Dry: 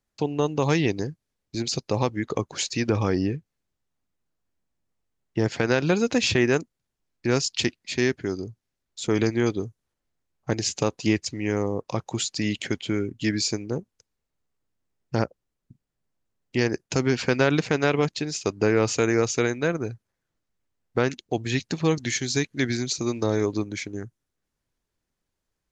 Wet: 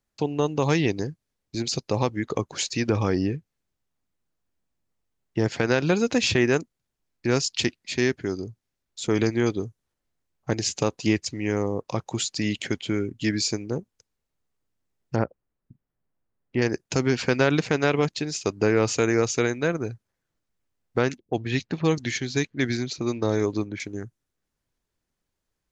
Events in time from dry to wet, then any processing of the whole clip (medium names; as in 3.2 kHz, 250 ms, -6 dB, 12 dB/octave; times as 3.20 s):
15.16–16.62 s: low-pass 2 kHz
21.18–23.80 s: level-controlled noise filter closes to 460 Hz, open at -19 dBFS